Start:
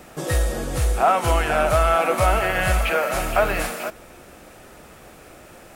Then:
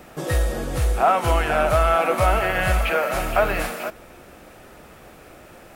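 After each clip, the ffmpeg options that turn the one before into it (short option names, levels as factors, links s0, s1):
-af "equalizer=f=8000:w=0.77:g=-4.5"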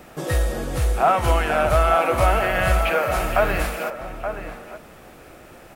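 -filter_complex "[0:a]asplit=2[s0][s1];[s1]adelay=874.6,volume=0.398,highshelf=f=4000:g=-19.7[s2];[s0][s2]amix=inputs=2:normalize=0"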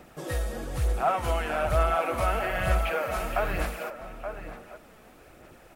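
-af "aphaser=in_gain=1:out_gain=1:delay=4.7:decay=0.33:speed=1.1:type=sinusoidal,volume=0.376"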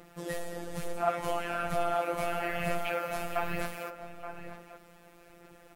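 -af "afftfilt=real='hypot(re,im)*cos(PI*b)':imag='0':win_size=1024:overlap=0.75"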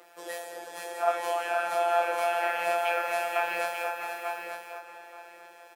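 -filter_complex "[0:a]highpass=f=390:w=0.5412,highpass=f=390:w=1.3066,asplit=2[s0][s1];[s1]adelay=22,volume=0.562[s2];[s0][s2]amix=inputs=2:normalize=0,asplit=2[s3][s4];[s4]aecho=0:1:483|648|894:0.473|0.376|0.355[s5];[s3][s5]amix=inputs=2:normalize=0,volume=1.12"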